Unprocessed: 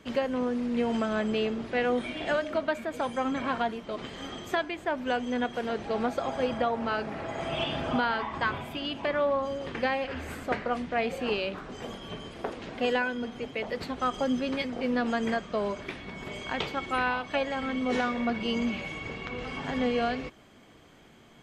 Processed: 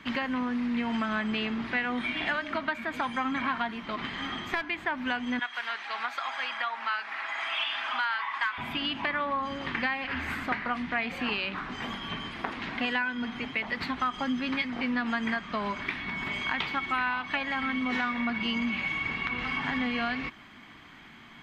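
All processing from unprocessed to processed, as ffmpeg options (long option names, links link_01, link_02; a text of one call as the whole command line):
ffmpeg -i in.wav -filter_complex "[0:a]asettb=1/sr,asplit=3[link_01][link_02][link_03];[link_01]atrim=end=3.914[link_04];[link_02]atrim=start=3.91:end=4.7,asetpts=PTS-STARTPTS,afade=type=in:duration=0.004:curve=qsin,afade=type=out:start_time=0.786:duration=0.004:curve=qsin,highshelf=frequency=5700:gain=-6,aeval=exprs='clip(val(0),-1,0.0251)':channel_layout=same[link_05];[link_03]atrim=start=4.696[link_06];[link_04][link_05]acrossfade=duration=0.004:curve1=hsin:curve2=qsin[link_07];[link_07][link_06]acrossfade=duration=0.004:curve1=qsin:curve2=hsin,asettb=1/sr,asplit=3[link_08][link_09][link_10];[link_08]atrim=end=5.394[link_11];[link_09]atrim=start=5.39:end=8.58,asetpts=PTS-STARTPTS,afade=type=in:duration=0.004:curve=qsin,afade=type=out:start_time=3.186:duration=0.004:curve=qsin,highpass=1100,volume=23dB,asoftclip=hard,volume=-23dB[link_12];[link_10]atrim=start=8.576[link_13];[link_11][link_12]acrossfade=duration=0.004:curve1=hsin:curve2=qsin[link_14];[link_14][link_13]acrossfade=duration=0.004:curve1=qsin:curve2=hsin,equalizer=frequency=250:width_type=o:width=1:gain=6,equalizer=frequency=500:width_type=o:width=1:gain=-11,equalizer=frequency=1000:width_type=o:width=1:gain=8,equalizer=frequency=2000:width_type=o:width=1:gain=10,equalizer=frequency=4000:width_type=o:width=1:gain=5,equalizer=frequency=8000:width_type=o:width=1:gain=-6,acompressor=threshold=-28dB:ratio=3" out.wav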